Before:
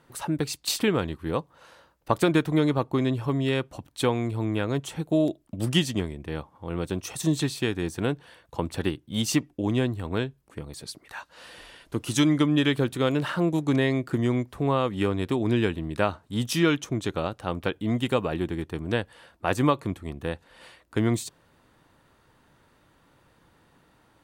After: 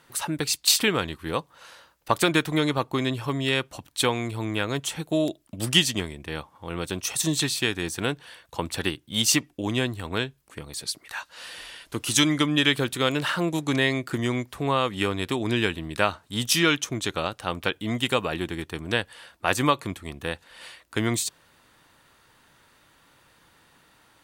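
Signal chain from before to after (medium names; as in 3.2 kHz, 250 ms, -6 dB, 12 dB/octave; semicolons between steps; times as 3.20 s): tilt shelf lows -6 dB, about 1.1 kHz; trim +3 dB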